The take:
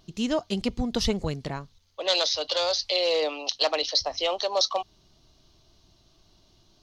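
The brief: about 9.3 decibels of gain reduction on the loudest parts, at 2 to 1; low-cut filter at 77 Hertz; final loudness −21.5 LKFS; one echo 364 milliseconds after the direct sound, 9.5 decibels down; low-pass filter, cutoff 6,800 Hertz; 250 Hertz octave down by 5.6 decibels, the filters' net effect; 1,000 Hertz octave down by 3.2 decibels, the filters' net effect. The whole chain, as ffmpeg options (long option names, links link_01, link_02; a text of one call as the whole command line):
ffmpeg -i in.wav -af "highpass=77,lowpass=6800,equalizer=frequency=250:width_type=o:gain=-6.5,equalizer=frequency=1000:width_type=o:gain=-4,acompressor=threshold=-38dB:ratio=2,aecho=1:1:364:0.335,volume=13.5dB" out.wav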